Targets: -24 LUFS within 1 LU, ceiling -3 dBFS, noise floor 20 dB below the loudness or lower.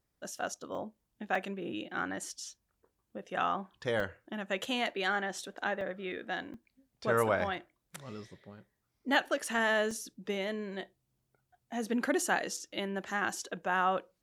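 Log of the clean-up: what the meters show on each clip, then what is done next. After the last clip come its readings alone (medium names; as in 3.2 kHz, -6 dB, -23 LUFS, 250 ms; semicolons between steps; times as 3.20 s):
dropouts 7; longest dropout 3.4 ms; loudness -34.0 LUFS; peak level -13.5 dBFS; loudness target -24.0 LUFS
-> interpolate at 0.75/1.35/4.00/5.81/6.54/9.91/12.57 s, 3.4 ms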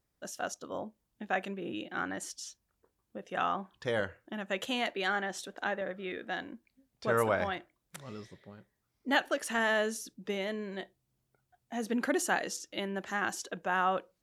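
dropouts 0; loudness -34.0 LUFS; peak level -13.5 dBFS; loudness target -24.0 LUFS
-> trim +10 dB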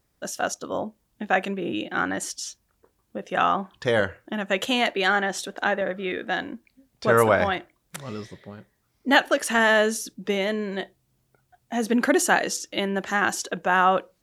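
loudness -24.0 LUFS; peak level -3.5 dBFS; noise floor -71 dBFS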